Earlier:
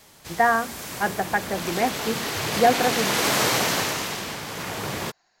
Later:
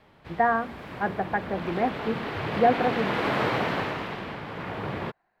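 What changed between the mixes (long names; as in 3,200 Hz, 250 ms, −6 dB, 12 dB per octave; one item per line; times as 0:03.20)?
speech: add high-frequency loss of the air 250 metres
master: add high-frequency loss of the air 470 metres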